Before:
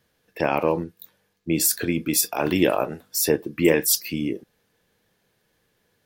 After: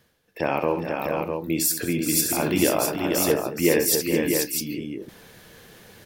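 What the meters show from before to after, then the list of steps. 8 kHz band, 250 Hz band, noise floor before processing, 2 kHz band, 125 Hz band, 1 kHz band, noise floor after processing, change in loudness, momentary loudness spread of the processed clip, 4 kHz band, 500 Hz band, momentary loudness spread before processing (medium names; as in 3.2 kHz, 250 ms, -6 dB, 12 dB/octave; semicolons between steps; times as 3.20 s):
+0.5 dB, 0.0 dB, -70 dBFS, +0.5 dB, 0.0 dB, +0.5 dB, -64 dBFS, -0.5 dB, 8 LU, +0.5 dB, +0.5 dB, 9 LU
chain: multi-tap echo 65/214/422/483/652 ms -8.5/-16.5/-9.5/-5/-5 dB; reverse; upward compressor, threshold -28 dBFS; reverse; trim -2.5 dB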